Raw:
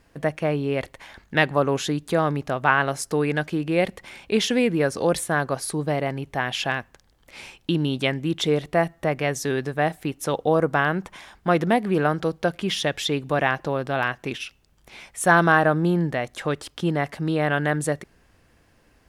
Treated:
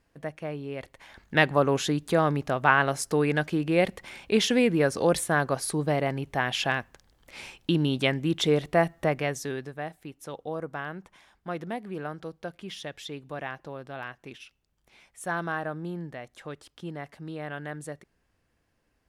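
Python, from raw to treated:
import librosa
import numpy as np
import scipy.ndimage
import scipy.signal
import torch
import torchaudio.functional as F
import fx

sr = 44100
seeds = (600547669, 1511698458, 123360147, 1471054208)

y = fx.gain(x, sr, db=fx.line((0.78, -11.0), (1.38, -1.5), (9.06, -1.5), (9.9, -14.0)))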